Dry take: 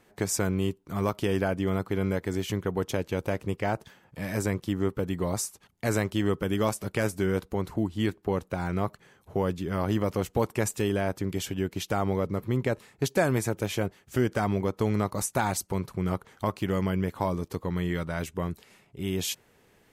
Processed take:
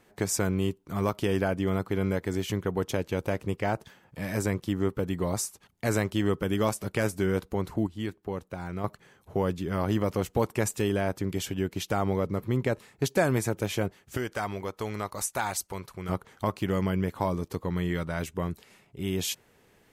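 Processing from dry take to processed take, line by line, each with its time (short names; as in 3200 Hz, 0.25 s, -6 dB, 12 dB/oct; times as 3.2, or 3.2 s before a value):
7.87–8.84 gain -6 dB
14.17–16.09 bell 170 Hz -11 dB 3 oct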